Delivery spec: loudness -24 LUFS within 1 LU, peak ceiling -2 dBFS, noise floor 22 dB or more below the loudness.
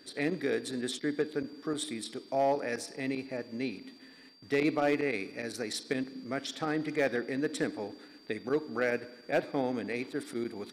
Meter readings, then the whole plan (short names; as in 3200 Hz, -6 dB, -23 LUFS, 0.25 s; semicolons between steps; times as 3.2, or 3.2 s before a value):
clipped 0.3%; flat tops at -20.0 dBFS; steady tone 4700 Hz; tone level -58 dBFS; loudness -33.5 LUFS; peak -20.0 dBFS; loudness target -24.0 LUFS
-> clip repair -20 dBFS; notch 4700 Hz, Q 30; gain +9.5 dB